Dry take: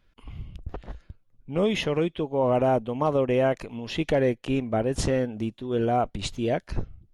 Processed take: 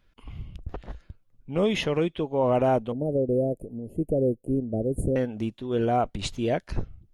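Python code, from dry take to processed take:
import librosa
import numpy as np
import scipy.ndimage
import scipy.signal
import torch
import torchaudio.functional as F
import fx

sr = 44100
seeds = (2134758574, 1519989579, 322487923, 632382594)

y = fx.cheby2_bandstop(x, sr, low_hz=1000.0, high_hz=6000.0, order=4, stop_db=40, at=(2.92, 5.16))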